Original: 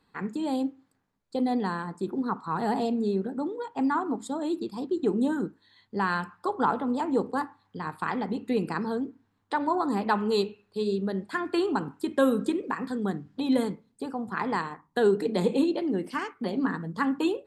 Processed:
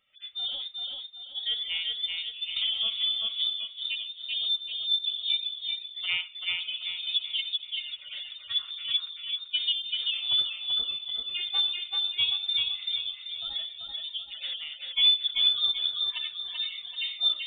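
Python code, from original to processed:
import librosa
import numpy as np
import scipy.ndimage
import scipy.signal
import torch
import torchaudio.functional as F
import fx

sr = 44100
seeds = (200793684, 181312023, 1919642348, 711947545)

p1 = fx.hpss_only(x, sr, part='harmonic')
p2 = scipy.signal.sosfilt(scipy.signal.butter(16, 290.0, 'highpass', fs=sr, output='sos'), p1)
p3 = fx.rider(p2, sr, range_db=4, speed_s=2.0)
p4 = p2 + F.gain(torch.from_numpy(p3), -1.0).numpy()
p5 = fx.tremolo_random(p4, sr, seeds[0], hz=3.5, depth_pct=55)
p6 = p5 + fx.echo_feedback(p5, sr, ms=386, feedback_pct=39, wet_db=-3, dry=0)
p7 = fx.freq_invert(p6, sr, carrier_hz=3900)
p8 = fx.band_squash(p7, sr, depth_pct=100, at=(2.56, 3.46))
y = F.gain(torch.from_numpy(p8), -4.5).numpy()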